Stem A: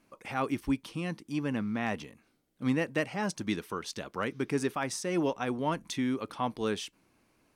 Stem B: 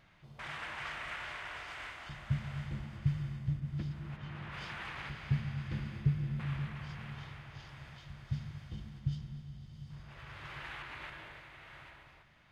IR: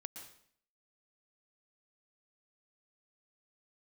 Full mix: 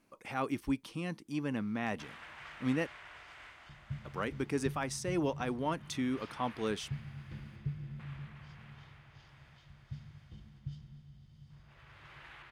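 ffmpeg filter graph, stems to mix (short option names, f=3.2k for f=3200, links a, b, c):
-filter_complex "[0:a]volume=-3.5dB,asplit=3[a][b][c];[a]atrim=end=2.87,asetpts=PTS-STARTPTS,afade=t=out:st=2.866:d=0.004:c=hsin[d];[b]atrim=start=2.87:end=4.05,asetpts=PTS-STARTPTS,volume=0[e];[c]atrim=start=4.05,asetpts=PTS-STARTPTS,afade=t=in:d=0.004:c=hsin[f];[d][e][f]concat=n=3:v=0:a=1[g];[1:a]adelay=1600,volume=-8dB[h];[g][h]amix=inputs=2:normalize=0"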